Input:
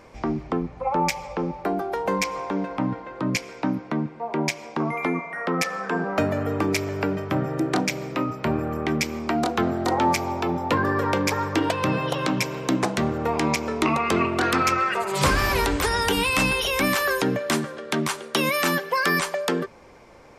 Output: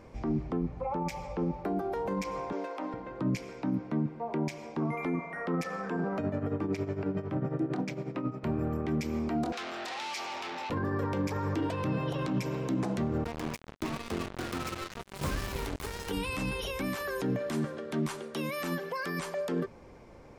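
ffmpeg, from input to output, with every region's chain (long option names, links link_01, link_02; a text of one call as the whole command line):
ffmpeg -i in.wav -filter_complex "[0:a]asettb=1/sr,asplit=3[link_01][link_02][link_03];[link_01]atrim=end=2.524[link_04];[link_02]atrim=start=2.52:end=2.94,asetpts=PTS-STARTPTS,afade=type=in:duration=0.004:curve=qsin,afade=type=out:start_time=0.416:duration=0.004:curve=qsin,highpass=frequency=380:width=0.5412,highpass=frequency=380:width=1.3066,highshelf=frequency=3700:gain=9[link_05];[link_03]atrim=start=2.936[link_06];[link_04][link_05]acrossfade=duration=0.004:curve1=hsin:curve2=qsin[link_07];[link_07][link_06]acrossfade=duration=0.004:curve1=qsin:curve2=hsin,asettb=1/sr,asplit=3[link_08][link_09][link_10];[link_08]atrim=end=6.184[link_11];[link_09]atrim=start=6.18:end=8.44,asetpts=PTS-STARTPTS,afade=type=in:duration=0.004:curve=qsin,afade=type=out:start_time=2.256:duration=0.004:curve=qsin,tremolo=f=11:d=0.7,highpass=100,aemphasis=mode=reproduction:type=50kf[link_12];[link_10]atrim=start=8.436[link_13];[link_11][link_12]acrossfade=duration=0.004:curve1=hsin:curve2=qsin[link_14];[link_14][link_13]acrossfade=duration=0.004:curve1=qsin:curve2=hsin,asettb=1/sr,asplit=3[link_15][link_16][link_17];[link_15]atrim=end=9.524[link_18];[link_16]atrim=start=9.52:end=10.7,asetpts=PTS-STARTPTS,afade=type=in:duration=0.004:curve=qsin,afade=type=out:start_time=1.176:duration=0.004:curve=qsin,asplit=2[link_19][link_20];[link_20]highpass=frequency=720:poles=1,volume=27dB,asoftclip=type=tanh:threshold=-10dB[link_21];[link_19][link_21]amix=inputs=2:normalize=0,lowpass=frequency=5100:poles=1,volume=-6dB,bandpass=frequency=4300:width_type=q:width=0.86[link_22];[link_17]atrim=start=10.696[link_23];[link_18][link_22]acrossfade=duration=0.004:curve1=hsin:curve2=qsin[link_24];[link_24][link_23]acrossfade=duration=0.004:curve1=qsin:curve2=hsin,asettb=1/sr,asplit=3[link_25][link_26][link_27];[link_25]atrim=end=13.244[link_28];[link_26]atrim=start=13.24:end=16.11,asetpts=PTS-STARTPTS,afade=type=in:duration=0.004:curve=qsin,afade=type=out:start_time=2.866:duration=0.004:curve=qsin,asoftclip=type=hard:threshold=-17.5dB,acrusher=bits=2:mix=0:aa=0.5[link_29];[link_27]atrim=start=16.106[link_30];[link_28][link_29]acrossfade=duration=0.004:curve1=hsin:curve2=qsin[link_31];[link_31][link_30]acrossfade=duration=0.004:curve1=qsin:curve2=hsin,alimiter=limit=-21dB:level=0:latency=1:release=46,lowshelf=frequency=470:gain=10.5,volume=-8.5dB" out.wav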